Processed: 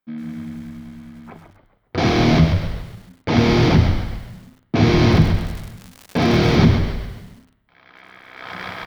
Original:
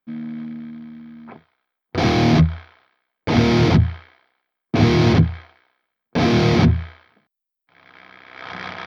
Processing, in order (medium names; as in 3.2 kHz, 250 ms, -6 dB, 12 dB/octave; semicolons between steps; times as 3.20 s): on a send: frequency-shifting echo 137 ms, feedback 47%, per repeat -68 Hz, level -7.5 dB; on the sum: spring tank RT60 1.2 s, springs 59 ms, chirp 70 ms, DRR 18 dB; 5.11–6.55 s: crackle 120 per s -26 dBFS; bit-crushed delay 100 ms, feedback 55%, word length 7-bit, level -12 dB